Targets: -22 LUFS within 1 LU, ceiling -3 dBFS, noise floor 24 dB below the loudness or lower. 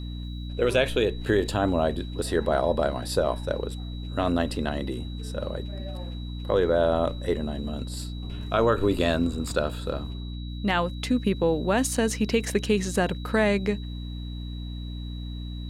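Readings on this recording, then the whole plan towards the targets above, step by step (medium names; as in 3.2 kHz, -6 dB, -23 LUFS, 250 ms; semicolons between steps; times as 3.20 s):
hum 60 Hz; highest harmonic 300 Hz; hum level -32 dBFS; steady tone 3.9 kHz; tone level -46 dBFS; loudness -27.0 LUFS; peak level -10.0 dBFS; loudness target -22.0 LUFS
-> de-hum 60 Hz, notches 5; band-stop 3.9 kHz, Q 30; trim +5 dB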